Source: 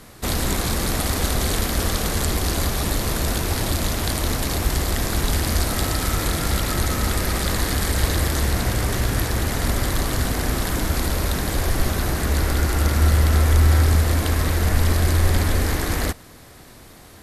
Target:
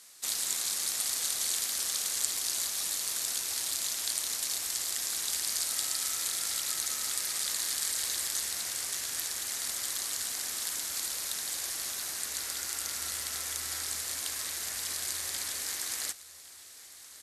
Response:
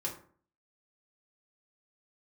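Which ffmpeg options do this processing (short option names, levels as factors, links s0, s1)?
-af "bandpass=f=7500:t=q:w=1.1:csg=0,aecho=1:1:1108|2216|3324|4432|5540:0.112|0.0662|0.0391|0.023|0.0136"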